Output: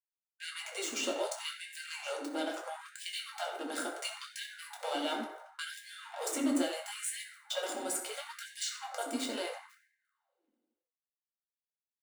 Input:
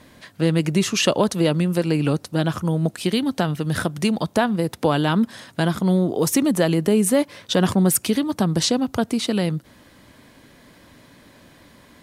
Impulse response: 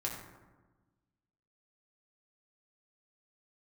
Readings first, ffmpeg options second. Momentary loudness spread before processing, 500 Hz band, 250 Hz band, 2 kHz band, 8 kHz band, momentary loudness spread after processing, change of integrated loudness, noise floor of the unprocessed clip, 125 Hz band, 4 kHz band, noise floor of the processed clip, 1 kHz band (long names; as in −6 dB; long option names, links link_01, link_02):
5 LU, −17.0 dB, −20.0 dB, −11.0 dB, −11.5 dB, 9 LU, −16.5 dB, −52 dBFS, below −40 dB, −11.5 dB, below −85 dBFS, −13.0 dB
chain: -filter_complex "[0:a]equalizer=frequency=7200:width=6.3:gain=9.5,aecho=1:1:1.4:0.63,aecho=1:1:1066|2132|3198|4264:0.0891|0.0446|0.0223|0.0111,aeval=exprs='sgn(val(0))*max(abs(val(0))-0.0316,0)':channel_layout=same,bass=frequency=250:gain=11,treble=frequency=4000:gain=-4,acrossover=split=260|1000|2900[link_01][link_02][link_03][link_04];[link_01]acompressor=threshold=-20dB:ratio=4[link_05];[link_02]acompressor=threshold=-32dB:ratio=4[link_06];[link_03]acompressor=threshold=-39dB:ratio=4[link_07];[link_04]acompressor=threshold=-30dB:ratio=4[link_08];[link_05][link_06][link_07][link_08]amix=inputs=4:normalize=0,agate=range=-19dB:threshold=-43dB:ratio=16:detection=peak[link_09];[1:a]atrim=start_sample=2205[link_10];[link_09][link_10]afir=irnorm=-1:irlink=0,aexciter=amount=1.2:drive=3:freq=8500,afftfilt=real='re*gte(b*sr/1024,220*pow(1600/220,0.5+0.5*sin(2*PI*0.73*pts/sr)))':imag='im*gte(b*sr/1024,220*pow(1600/220,0.5+0.5*sin(2*PI*0.73*pts/sr)))':win_size=1024:overlap=0.75,volume=-6.5dB"